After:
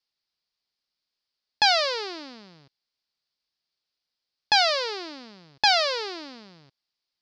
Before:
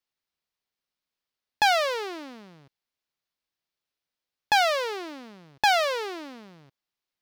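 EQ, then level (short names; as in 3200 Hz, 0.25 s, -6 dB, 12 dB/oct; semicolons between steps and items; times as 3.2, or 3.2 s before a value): synth low-pass 4800 Hz, resonance Q 4.2; -1.5 dB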